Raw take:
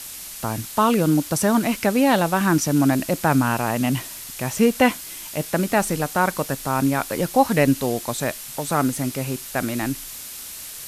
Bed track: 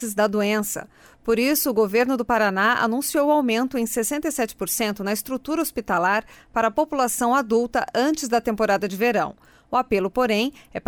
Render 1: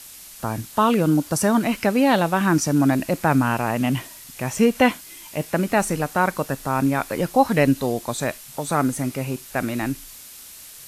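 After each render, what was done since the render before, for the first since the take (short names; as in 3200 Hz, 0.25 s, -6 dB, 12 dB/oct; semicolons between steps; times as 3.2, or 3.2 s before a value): noise print and reduce 6 dB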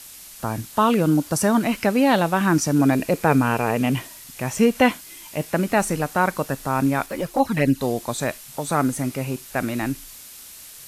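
2.79–3.99 small resonant body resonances 450/2400 Hz, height 10 dB; 7.06–7.81 envelope flanger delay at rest 7.7 ms, full sweep at -11 dBFS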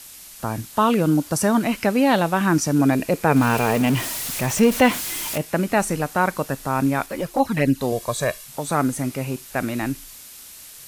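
3.36–5.38 zero-crossing step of -24 dBFS; 7.92–8.46 comb 1.8 ms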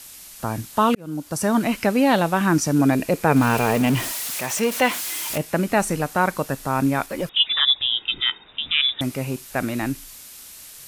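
0.95–1.6 fade in; 4.11–5.3 HPF 590 Hz 6 dB/oct; 7.29–9.01 inverted band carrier 3700 Hz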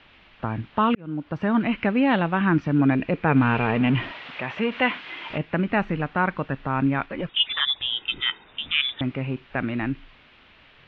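steep low-pass 3100 Hz 36 dB/oct; dynamic EQ 600 Hz, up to -6 dB, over -33 dBFS, Q 0.96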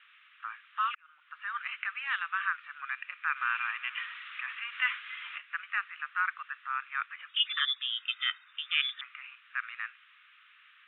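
Chebyshev band-pass 1200–3700 Hz, order 4; high shelf 2900 Hz -11 dB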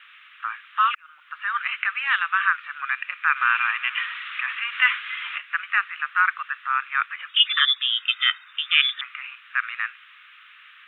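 gain +10.5 dB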